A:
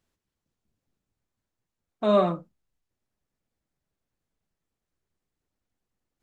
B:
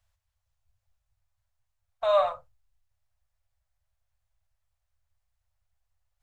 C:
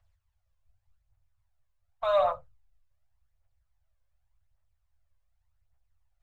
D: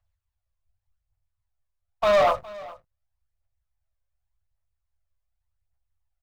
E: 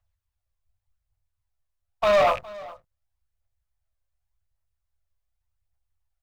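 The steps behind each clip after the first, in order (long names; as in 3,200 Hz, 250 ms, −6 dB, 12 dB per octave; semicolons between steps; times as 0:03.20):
inverse Chebyshev band-stop filter 160–400 Hz, stop band 40 dB; low-shelf EQ 240 Hz +9.5 dB
high-shelf EQ 3,700 Hz −9.5 dB; phase shifter 0.87 Hz, delay 2 ms, feedback 49%
leveller curve on the samples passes 3; single-tap delay 412 ms −20 dB
loose part that buzzes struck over −44 dBFS, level −22 dBFS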